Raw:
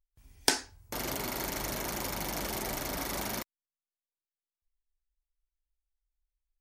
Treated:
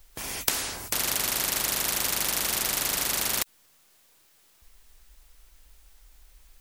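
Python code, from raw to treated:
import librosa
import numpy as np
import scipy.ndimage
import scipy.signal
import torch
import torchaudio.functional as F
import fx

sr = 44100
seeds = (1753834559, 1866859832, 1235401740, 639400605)

y = fx.spectral_comp(x, sr, ratio=10.0)
y = F.gain(torch.from_numpy(y), 3.0).numpy()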